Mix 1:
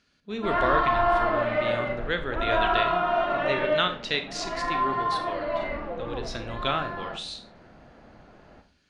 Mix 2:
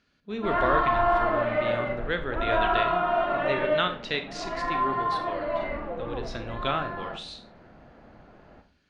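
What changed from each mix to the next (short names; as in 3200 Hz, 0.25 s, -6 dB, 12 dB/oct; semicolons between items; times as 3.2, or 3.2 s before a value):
master: add high shelf 4800 Hz -10.5 dB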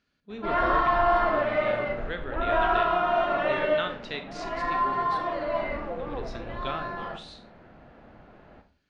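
speech -6.0 dB; background: remove air absorption 140 m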